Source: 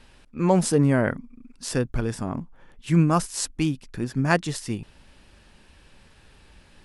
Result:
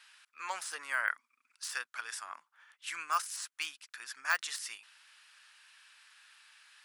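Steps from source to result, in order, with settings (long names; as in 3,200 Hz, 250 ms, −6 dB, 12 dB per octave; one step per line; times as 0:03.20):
de-essing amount 70%
Chebyshev high-pass filter 1,300 Hz, order 3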